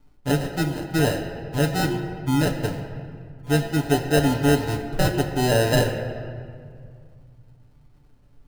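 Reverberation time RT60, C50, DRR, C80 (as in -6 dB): 2.2 s, 7.0 dB, 1.0 dB, 8.0 dB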